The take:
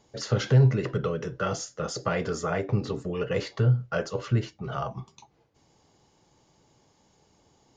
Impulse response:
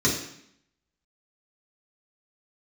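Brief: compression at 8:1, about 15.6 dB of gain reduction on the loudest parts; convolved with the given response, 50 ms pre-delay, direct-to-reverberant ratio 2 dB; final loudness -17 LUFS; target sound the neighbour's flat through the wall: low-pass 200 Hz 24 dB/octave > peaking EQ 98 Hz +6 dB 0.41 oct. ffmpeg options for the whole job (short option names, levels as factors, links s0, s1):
-filter_complex "[0:a]acompressor=threshold=0.0282:ratio=8,asplit=2[s0][s1];[1:a]atrim=start_sample=2205,adelay=50[s2];[s1][s2]afir=irnorm=-1:irlink=0,volume=0.158[s3];[s0][s3]amix=inputs=2:normalize=0,lowpass=f=200:w=0.5412,lowpass=f=200:w=1.3066,equalizer=f=98:t=o:w=0.41:g=6,volume=4.73"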